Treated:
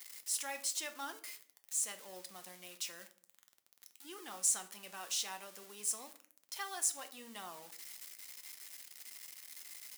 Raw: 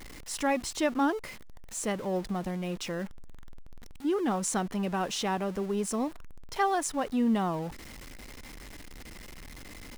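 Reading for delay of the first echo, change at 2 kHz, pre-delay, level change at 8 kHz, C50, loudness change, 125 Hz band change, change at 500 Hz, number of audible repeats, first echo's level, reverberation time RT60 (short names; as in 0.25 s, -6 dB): none, -10.0 dB, 6 ms, +2.0 dB, 15.0 dB, -8.5 dB, under -30 dB, -21.0 dB, none, none, 0.55 s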